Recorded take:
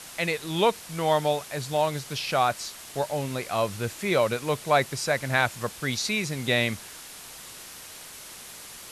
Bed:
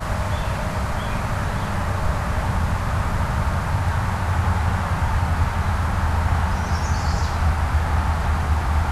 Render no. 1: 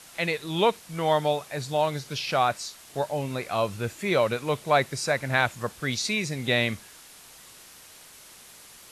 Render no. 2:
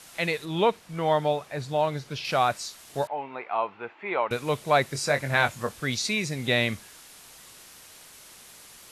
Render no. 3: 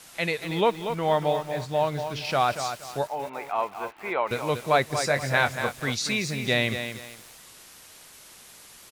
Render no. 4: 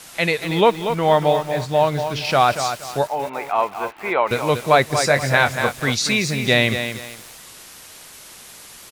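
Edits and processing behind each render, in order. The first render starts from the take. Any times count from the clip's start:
noise print and reduce 6 dB
0.45–2.25 high shelf 4200 Hz -10 dB; 3.07–4.31 speaker cabinet 470–2400 Hz, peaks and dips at 560 Hz -7 dB, 870 Hz +8 dB, 1700 Hz -4 dB; 4.93–5.8 doubler 21 ms -7.5 dB
echo 0.189 s -23 dB; lo-fi delay 0.236 s, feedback 35%, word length 7-bit, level -8 dB
gain +7.5 dB; limiter -2 dBFS, peak gain reduction 2 dB

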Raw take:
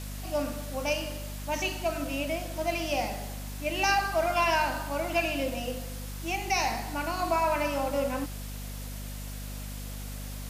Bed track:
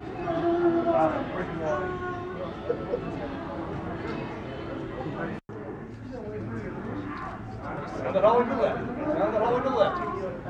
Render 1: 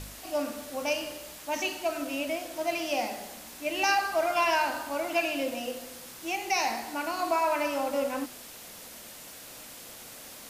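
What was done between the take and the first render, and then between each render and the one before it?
de-hum 50 Hz, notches 5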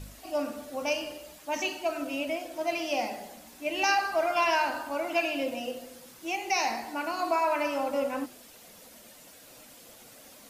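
denoiser 8 dB, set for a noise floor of -46 dBFS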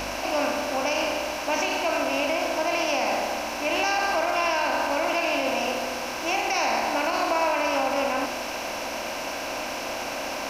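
per-bin compression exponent 0.4; limiter -15 dBFS, peak gain reduction 5.5 dB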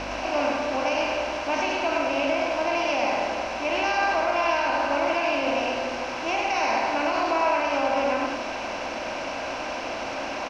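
air absorption 130 m; echo 0.103 s -4.5 dB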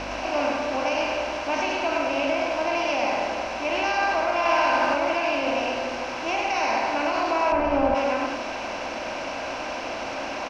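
4.39–4.94 flutter echo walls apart 10.8 m, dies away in 1.3 s; 7.52–7.95 tilt -4 dB/oct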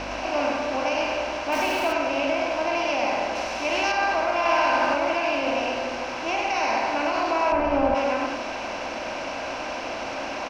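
1.52–1.93 zero-crossing step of -31.5 dBFS; 3.35–3.92 high shelf 4800 Hz +9.5 dB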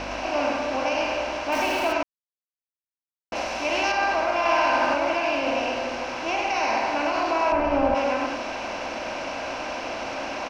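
2.03–3.32 mute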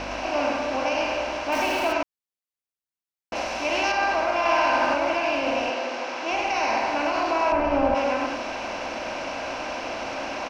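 5.7–6.31 BPF 260–7900 Hz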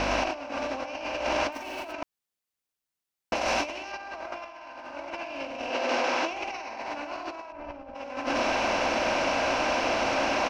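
negative-ratio compressor -30 dBFS, ratio -0.5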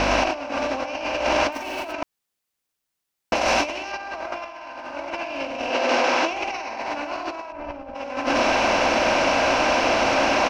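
gain +6.5 dB

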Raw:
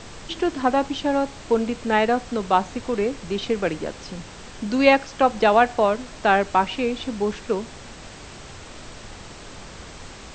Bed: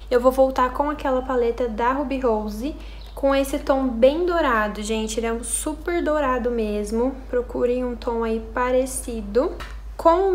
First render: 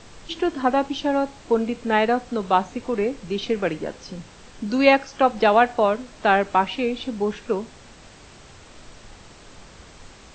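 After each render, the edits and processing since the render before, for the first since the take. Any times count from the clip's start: noise print and reduce 6 dB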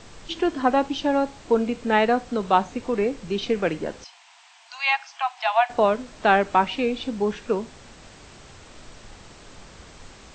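4.04–5.7 rippled Chebyshev high-pass 670 Hz, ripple 6 dB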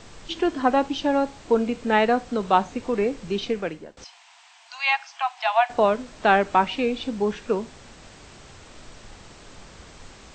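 3.36–3.97 fade out, to -23 dB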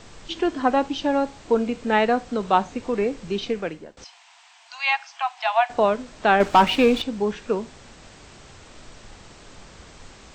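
6.4–7.02 sample leveller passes 2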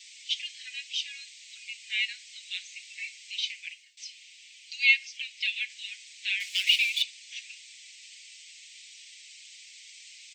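steep high-pass 2100 Hz 72 dB/oct; comb 6 ms, depth 95%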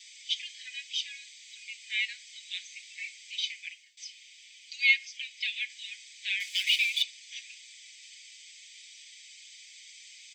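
notch comb 1400 Hz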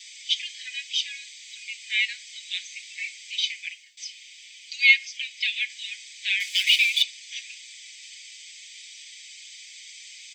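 gain +6.5 dB

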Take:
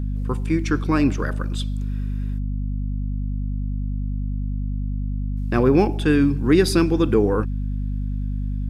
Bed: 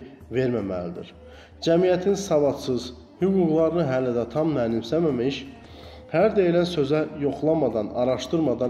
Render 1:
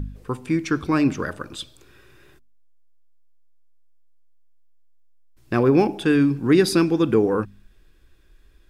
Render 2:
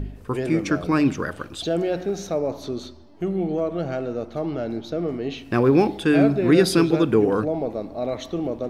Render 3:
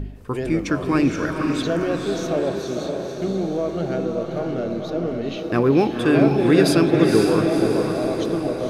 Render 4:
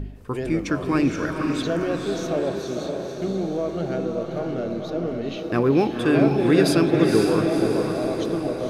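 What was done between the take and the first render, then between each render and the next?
de-hum 50 Hz, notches 5
add bed -4 dB
diffused feedback echo 0.506 s, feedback 55%, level -3.5 dB
gain -2 dB

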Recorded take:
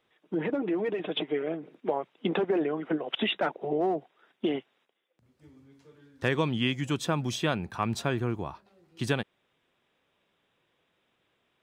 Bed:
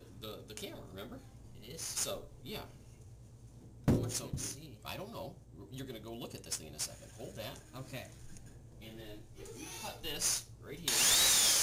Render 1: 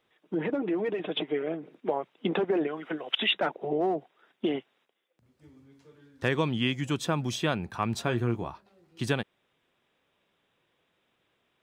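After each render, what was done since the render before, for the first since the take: 2.67–3.34 tilt shelf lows -6.5 dB, about 1200 Hz; 8.04–8.49 doubler 17 ms -8 dB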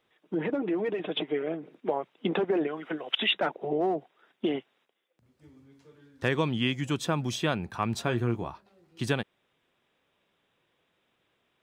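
nothing audible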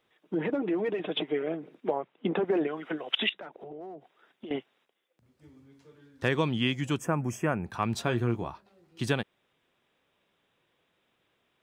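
1.91–2.45 air absorption 270 m; 3.29–4.51 compressor 4:1, threshold -42 dBFS; 6.98–7.66 Butterworth band-stop 3900 Hz, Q 0.86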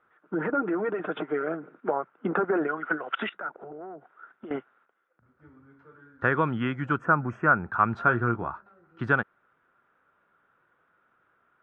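synth low-pass 1400 Hz, resonance Q 8.2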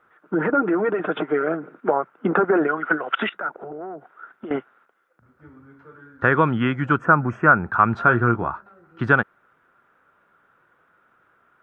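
gain +7 dB; limiter -3 dBFS, peak gain reduction 2 dB

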